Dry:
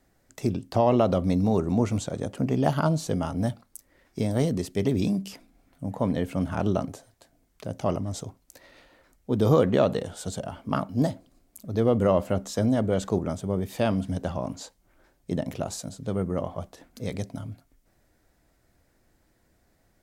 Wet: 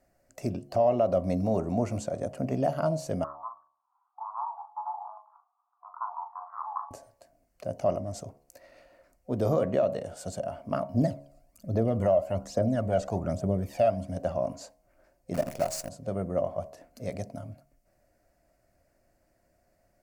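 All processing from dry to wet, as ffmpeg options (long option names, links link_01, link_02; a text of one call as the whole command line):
ffmpeg -i in.wav -filter_complex "[0:a]asettb=1/sr,asplit=3[link_01][link_02][link_03];[link_01]atrim=end=3.244[link_04];[link_02]atrim=start=3.24:end=6.91,asetpts=PTS-STARTPTS,afade=type=in:duration=0.004:curve=qsin,afade=type=out:start_time=3.666:duration=0.004:curve=qsin,asuperpass=centerf=570:order=8:qfactor=1.2,asplit=2[link_05][link_06];[link_06]adelay=40,volume=-8dB[link_07];[link_05][link_07]amix=inputs=2:normalize=0,atrim=end_sample=161847,afreqshift=450[link_08];[link_03]atrim=start=6.906[link_09];[link_04][link_08]acrossfade=duration=0.004:curve1=hsin:curve2=qsin[link_10];[link_10][link_09]acrossfade=duration=0.004:curve1=qsin:curve2=hsin,asettb=1/sr,asplit=3[link_11][link_12][link_13];[link_11]atrim=end=10.944[link_14];[link_12]atrim=start=10.94:end=14.07,asetpts=PTS-STARTPTS,afade=type=in:duration=0.004:curve=qsin,afade=type=out:start_time=3.126:duration=0.004:curve=qsin,aphaser=in_gain=1:out_gain=1:delay=1.6:decay=0.6:speed=1.2:type=triangular,acrossover=split=6300[link_15][link_16];[link_16]acompressor=threshold=-48dB:ratio=4:attack=1:release=60[link_17];[link_15][link_17]amix=inputs=2:normalize=0[link_18];[link_13]atrim=start=14.066[link_19];[link_14][link_18]acrossfade=duration=0.004:curve1=hsin:curve2=qsin[link_20];[link_20][link_19]acrossfade=duration=0.004:curve1=qsin:curve2=hsin,asettb=1/sr,asplit=3[link_21][link_22][link_23];[link_21]atrim=end=15.344[link_24];[link_22]atrim=start=15.34:end=15.89,asetpts=PTS-STARTPTS,afade=type=in:duration=0.004:curve=qsin,afade=type=out:start_time=0.546:duration=0.004:curve=qsin,asuperstop=centerf=2800:order=4:qfactor=5.4,highshelf=frequency=2100:gain=5.5,acrusher=bits=6:dc=4:mix=0:aa=0.000001[link_25];[link_23]atrim=start=15.886[link_26];[link_24][link_25]acrossfade=duration=0.004:curve1=hsin:curve2=qsin[link_27];[link_27][link_26]acrossfade=duration=0.004:curve1=qsin:curve2=hsin,superequalizer=8b=3.16:13b=0.398,alimiter=limit=-9dB:level=0:latency=1:release=304,bandreject=frequency=70.59:width_type=h:width=4,bandreject=frequency=141.18:width_type=h:width=4,bandreject=frequency=211.77:width_type=h:width=4,bandreject=frequency=282.36:width_type=h:width=4,bandreject=frequency=352.95:width_type=h:width=4,bandreject=frequency=423.54:width_type=h:width=4,bandreject=frequency=494.13:width_type=h:width=4,bandreject=frequency=564.72:width_type=h:width=4,bandreject=frequency=635.31:width_type=h:width=4,bandreject=frequency=705.9:width_type=h:width=4,bandreject=frequency=776.49:width_type=h:width=4,bandreject=frequency=847.08:width_type=h:width=4,bandreject=frequency=917.67:width_type=h:width=4,bandreject=frequency=988.26:width_type=h:width=4,bandreject=frequency=1058.85:width_type=h:width=4,bandreject=frequency=1129.44:width_type=h:width=4,volume=-5dB" out.wav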